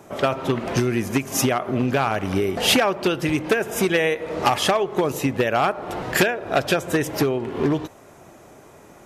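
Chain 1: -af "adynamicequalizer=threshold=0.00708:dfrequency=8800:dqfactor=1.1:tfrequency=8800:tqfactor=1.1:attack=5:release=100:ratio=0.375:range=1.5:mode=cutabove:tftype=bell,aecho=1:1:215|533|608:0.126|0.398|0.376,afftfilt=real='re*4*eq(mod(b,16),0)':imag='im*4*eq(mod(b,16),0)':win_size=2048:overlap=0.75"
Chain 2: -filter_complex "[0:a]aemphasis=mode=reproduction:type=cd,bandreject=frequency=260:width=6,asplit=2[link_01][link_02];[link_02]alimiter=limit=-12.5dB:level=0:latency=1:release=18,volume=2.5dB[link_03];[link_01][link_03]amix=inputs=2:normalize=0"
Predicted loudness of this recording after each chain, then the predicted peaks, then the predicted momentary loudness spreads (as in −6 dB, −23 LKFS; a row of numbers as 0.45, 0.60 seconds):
−24.0, −16.0 LKFS; −7.0, −1.5 dBFS; 9, 4 LU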